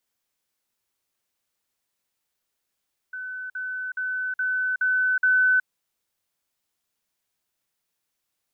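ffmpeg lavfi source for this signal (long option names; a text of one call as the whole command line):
ffmpeg -f lavfi -i "aevalsrc='pow(10,(-31+3*floor(t/0.42))/20)*sin(2*PI*1510*t)*clip(min(mod(t,0.42),0.37-mod(t,0.42))/0.005,0,1)':duration=2.52:sample_rate=44100" out.wav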